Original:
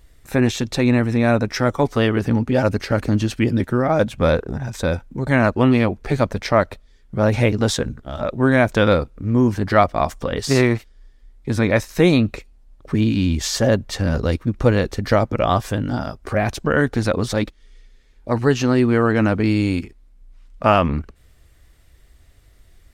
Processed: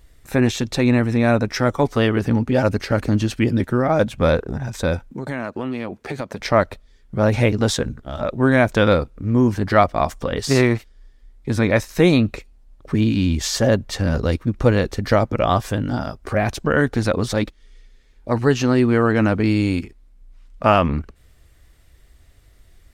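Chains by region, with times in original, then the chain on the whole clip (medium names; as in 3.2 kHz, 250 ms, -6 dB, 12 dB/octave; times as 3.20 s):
5.11–6.40 s: high-pass 160 Hz + compression 5:1, threshold -23 dBFS
whole clip: none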